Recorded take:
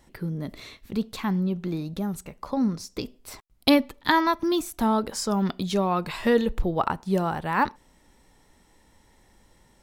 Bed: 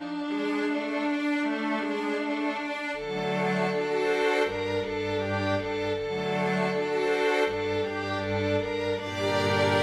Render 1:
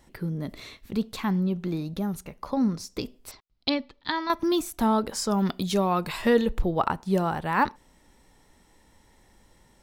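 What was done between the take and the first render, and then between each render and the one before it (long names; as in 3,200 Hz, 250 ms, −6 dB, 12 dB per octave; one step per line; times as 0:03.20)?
0:01.93–0:02.74: notch filter 7,800 Hz, Q 6.4
0:03.31–0:04.30: transistor ladder low-pass 5,300 Hz, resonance 45%
0:05.38–0:06.22: high-shelf EQ 8,400 Hz +7.5 dB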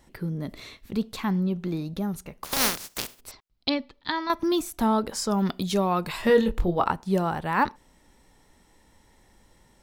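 0:02.43–0:03.19: compressing power law on the bin magnitudes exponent 0.19
0:06.27–0:06.91: double-tracking delay 23 ms −6 dB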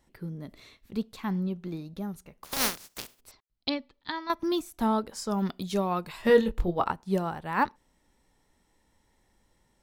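expander for the loud parts 1.5 to 1, over −34 dBFS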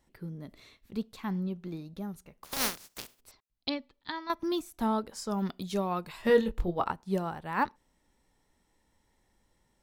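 level −3 dB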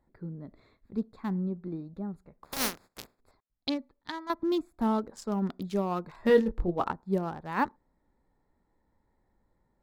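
adaptive Wiener filter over 15 samples
dynamic equaliser 290 Hz, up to +4 dB, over −43 dBFS, Q 1.3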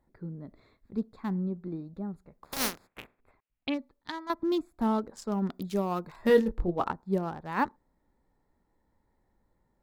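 0:02.87–0:03.74: high shelf with overshoot 3,600 Hz −11 dB, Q 3
0:05.54–0:06.53: high-shelf EQ 8,500 Hz +8.5 dB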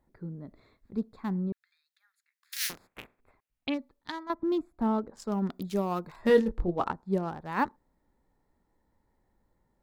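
0:01.52–0:02.70: elliptic high-pass filter 1,700 Hz, stop band 80 dB
0:04.23–0:05.20: high-shelf EQ 2,800 Hz −10.5 dB
0:06.20–0:07.29: low-pass filter 11,000 Hz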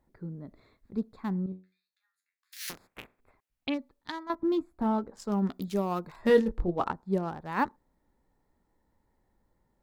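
0:01.46–0:02.68: tuned comb filter 93 Hz, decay 0.3 s, mix 90%
0:04.32–0:05.68: double-tracking delay 15 ms −10 dB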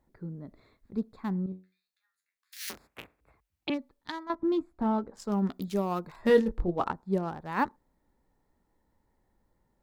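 0:02.65–0:03.70: frequency shifter +46 Hz
0:04.25–0:05.14: high-shelf EQ 9,100 Hz −10 dB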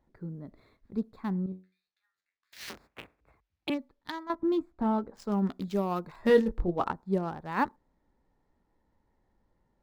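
running median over 5 samples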